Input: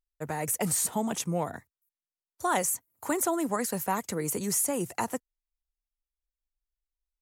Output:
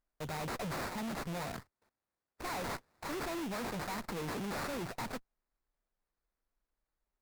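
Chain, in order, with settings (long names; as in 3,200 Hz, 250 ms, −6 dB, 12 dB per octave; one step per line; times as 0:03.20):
sample-rate reduction 3,100 Hz, jitter 20%
tube saturation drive 43 dB, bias 0.7
level +6 dB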